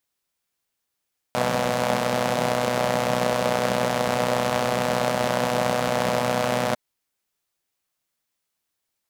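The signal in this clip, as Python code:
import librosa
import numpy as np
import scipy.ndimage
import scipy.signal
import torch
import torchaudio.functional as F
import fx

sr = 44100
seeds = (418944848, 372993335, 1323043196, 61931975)

y = fx.engine_four(sr, seeds[0], length_s=5.4, rpm=3700, resonances_hz=(200.0, 560.0))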